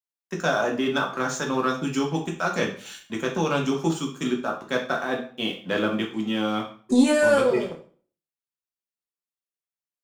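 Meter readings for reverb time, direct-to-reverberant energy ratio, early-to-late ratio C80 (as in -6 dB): 0.45 s, 0.0 dB, 13.5 dB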